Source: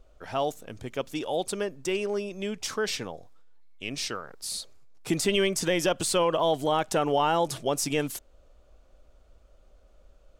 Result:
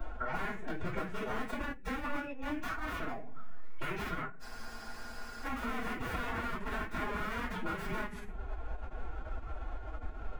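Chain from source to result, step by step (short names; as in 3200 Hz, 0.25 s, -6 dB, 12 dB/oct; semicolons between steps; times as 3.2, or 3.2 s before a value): rattling part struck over -35 dBFS, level -34 dBFS; LPF 8400 Hz 12 dB/oct; low shelf 430 Hz -8 dB; wrapped overs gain 29 dB; EQ curve 860 Hz 0 dB, 1300 Hz +5 dB, 6100 Hz -22 dB; compressor 6:1, threshold -52 dBFS, peak gain reduction 18.5 dB; reverb RT60 0.35 s, pre-delay 3 ms, DRR -8.5 dB; formant-preserving pitch shift +6 st; spectral freeze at 4.44, 1.01 s; three-band squash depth 40%; gain +5.5 dB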